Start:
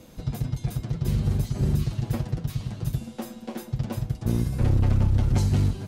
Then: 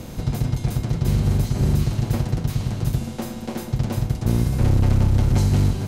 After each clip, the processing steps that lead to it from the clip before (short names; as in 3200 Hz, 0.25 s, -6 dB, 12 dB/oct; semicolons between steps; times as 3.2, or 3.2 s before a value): per-bin compression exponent 0.6; gain +2 dB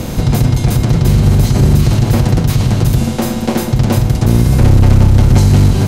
maximiser +15.5 dB; gain -1 dB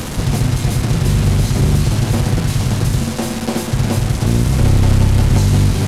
delta modulation 64 kbps, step -15 dBFS; gain -4.5 dB